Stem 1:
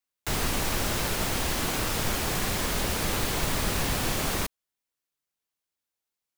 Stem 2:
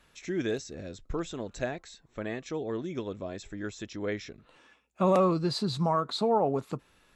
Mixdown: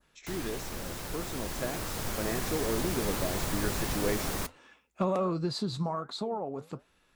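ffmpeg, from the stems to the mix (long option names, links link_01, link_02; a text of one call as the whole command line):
ffmpeg -i stem1.wav -i stem2.wav -filter_complex "[0:a]volume=-7dB[link_01];[1:a]acompressor=threshold=-28dB:ratio=4,asoftclip=type=hard:threshold=-20.5dB,volume=0dB[link_02];[link_01][link_02]amix=inputs=2:normalize=0,dynaudnorm=framelen=210:gausssize=17:maxgain=7dB,flanger=delay=4.7:depth=6.1:regen=-83:speed=1.3:shape=sinusoidal,adynamicequalizer=threshold=0.00316:dfrequency=2900:dqfactor=1:tfrequency=2900:tqfactor=1:attack=5:release=100:ratio=0.375:range=2:mode=cutabove:tftype=bell" out.wav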